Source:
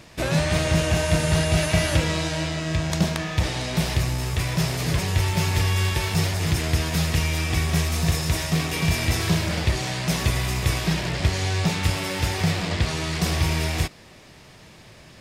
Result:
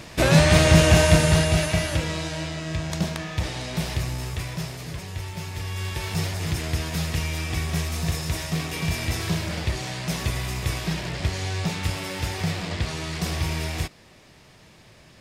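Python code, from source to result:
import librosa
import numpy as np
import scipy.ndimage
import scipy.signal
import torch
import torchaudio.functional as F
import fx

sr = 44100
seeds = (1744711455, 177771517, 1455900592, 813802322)

y = fx.gain(x, sr, db=fx.line((1.01, 6.0), (1.89, -4.0), (4.24, -4.0), (4.91, -11.0), (5.55, -11.0), (6.13, -4.0)))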